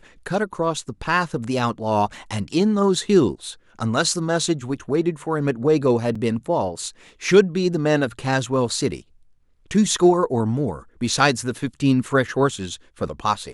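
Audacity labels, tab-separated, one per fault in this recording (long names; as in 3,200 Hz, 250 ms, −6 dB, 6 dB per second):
6.150000	6.150000	drop-out 4.6 ms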